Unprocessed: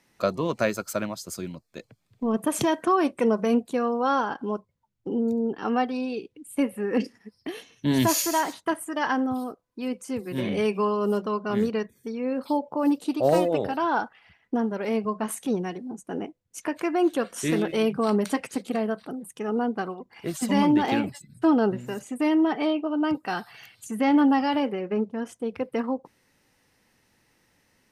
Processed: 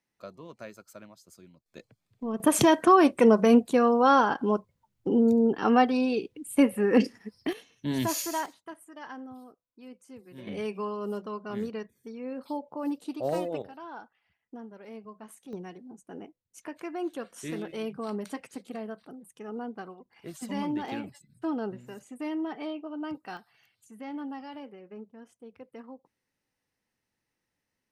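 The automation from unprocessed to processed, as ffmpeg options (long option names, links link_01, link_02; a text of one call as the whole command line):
ffmpeg -i in.wav -af "asetnsamples=nb_out_samples=441:pad=0,asendcmd='1.66 volume volume -7dB;2.4 volume volume 3.5dB;7.53 volume volume -7dB;8.46 volume volume -17dB;10.47 volume volume -9dB;13.62 volume volume -18dB;15.53 volume volume -11dB;23.37 volume volume -18dB',volume=-19dB" out.wav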